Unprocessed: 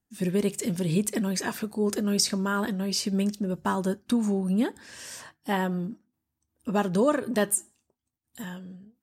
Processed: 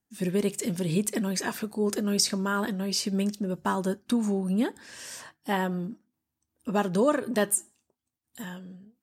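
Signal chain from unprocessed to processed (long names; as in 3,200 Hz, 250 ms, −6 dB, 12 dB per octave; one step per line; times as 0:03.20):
low-shelf EQ 91 Hz −8 dB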